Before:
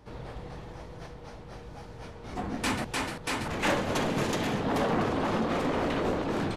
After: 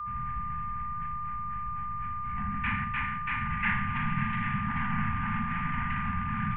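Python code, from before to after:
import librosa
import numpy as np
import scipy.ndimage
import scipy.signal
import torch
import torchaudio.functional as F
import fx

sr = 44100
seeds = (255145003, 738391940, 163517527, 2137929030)

y = scipy.signal.sosfilt(scipy.signal.cheby2(4, 50, 5900.0, 'lowpass', fs=sr, output='sos'), x)
y = fx.fixed_phaser(y, sr, hz=1200.0, stages=6)
y = fx.rev_schroeder(y, sr, rt60_s=0.43, comb_ms=26, drr_db=5.5)
y = y + 10.0 ** (-38.0 / 20.0) * np.sin(2.0 * np.pi * 1200.0 * np.arange(len(y)) / sr)
y = scipy.signal.sosfilt(scipy.signal.ellip(3, 1.0, 60, [220.0, 1100.0], 'bandstop', fs=sr, output='sos'), y)
y = F.gain(torch.from_numpy(y), 5.0).numpy()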